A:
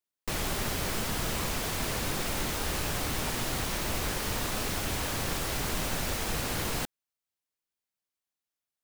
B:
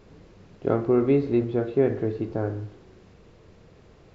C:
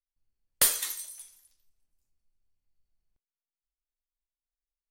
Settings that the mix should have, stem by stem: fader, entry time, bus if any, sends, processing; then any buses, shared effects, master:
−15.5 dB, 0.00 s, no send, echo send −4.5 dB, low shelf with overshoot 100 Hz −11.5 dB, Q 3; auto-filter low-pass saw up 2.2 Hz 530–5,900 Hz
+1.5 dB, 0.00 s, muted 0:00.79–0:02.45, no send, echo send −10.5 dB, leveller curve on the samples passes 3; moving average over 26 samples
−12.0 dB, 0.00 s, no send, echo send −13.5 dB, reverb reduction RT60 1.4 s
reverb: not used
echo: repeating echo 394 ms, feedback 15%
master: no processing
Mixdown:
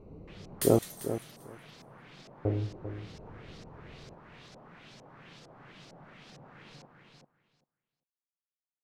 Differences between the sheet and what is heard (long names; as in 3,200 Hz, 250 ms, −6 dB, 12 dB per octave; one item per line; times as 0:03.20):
stem A −15.5 dB → −23.0 dB
stem B: missing leveller curve on the samples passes 3
stem C: missing reverb reduction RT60 1.4 s